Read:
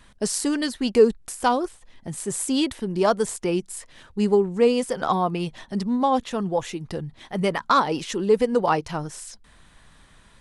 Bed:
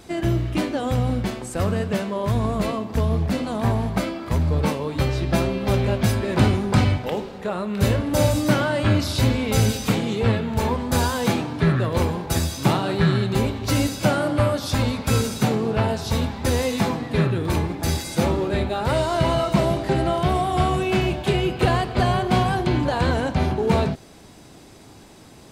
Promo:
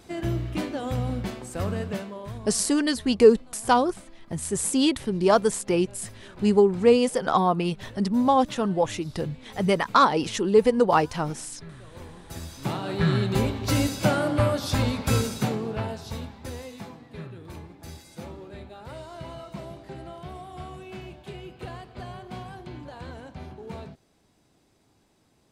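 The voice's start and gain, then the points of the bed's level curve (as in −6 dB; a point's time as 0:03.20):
2.25 s, +1.0 dB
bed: 0:01.88 −6 dB
0:02.78 −25 dB
0:11.84 −25 dB
0:13.14 −2.5 dB
0:15.12 −2.5 dB
0:16.88 −19 dB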